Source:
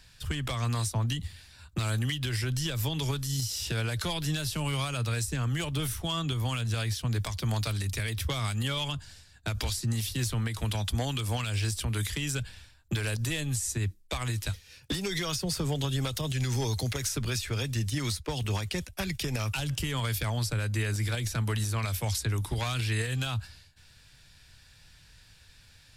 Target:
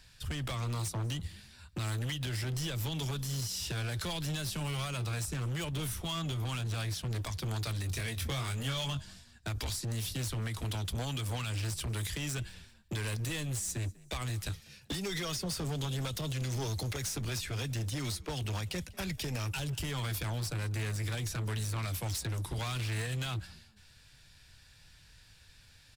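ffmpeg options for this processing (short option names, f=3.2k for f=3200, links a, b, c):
-filter_complex "[0:a]volume=29.5dB,asoftclip=hard,volume=-29.5dB,asettb=1/sr,asplit=3[a][b][c];[a]atrim=end=7.884[d];[b]atrim=start=7.88:end=9.02,asetpts=PTS-STARTPTS,afade=t=in:d=0.004:c=qsin,afade=t=out:st=1.136:d=0.004:c=qsin,asplit=2[e][f];[f]adelay=22,volume=-6dB[g];[e][g]amix=inputs=2:normalize=0,atrim=end_sample=50274[h];[c]atrim=start=9.016[i];[d][h]acrossfade=d=0.004:c1=hsin:c2=qsin[j];[j][i]acrossfade=d=0.004:c1=qsin:c2=hsin,asplit=3[k][l][m];[l]adelay=194,afreqshift=47,volume=-23.5dB[n];[m]adelay=388,afreqshift=94,volume=-32.9dB[o];[k][n][o]amix=inputs=3:normalize=0,volume=-2.5dB"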